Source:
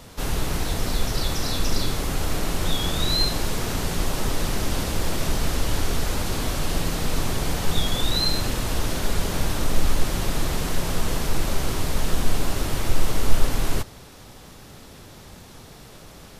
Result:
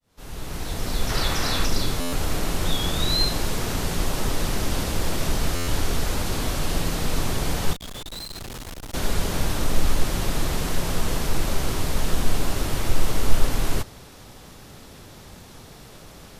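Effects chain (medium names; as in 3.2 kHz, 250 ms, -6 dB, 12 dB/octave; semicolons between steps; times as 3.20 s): fade-in on the opening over 1.12 s; 1.09–1.66 s: peaking EQ 1.6 kHz +6.5 dB 2.3 oct; 7.73–8.94 s: valve stage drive 33 dB, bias 0.5; buffer glitch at 2.00/5.55 s, samples 512, times 10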